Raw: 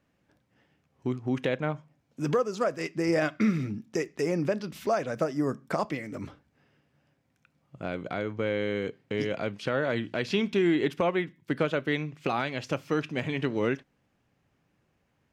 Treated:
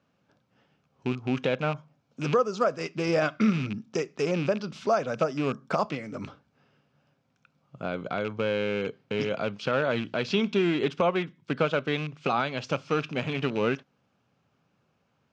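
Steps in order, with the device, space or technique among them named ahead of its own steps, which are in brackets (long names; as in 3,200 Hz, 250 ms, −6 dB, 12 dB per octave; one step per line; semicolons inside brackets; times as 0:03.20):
car door speaker with a rattle (loose part that buzzes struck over −32 dBFS, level −28 dBFS; loudspeaker in its box 110–6,500 Hz, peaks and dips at 320 Hz −6 dB, 1,300 Hz +4 dB, 1,900 Hz −8 dB)
level +2.5 dB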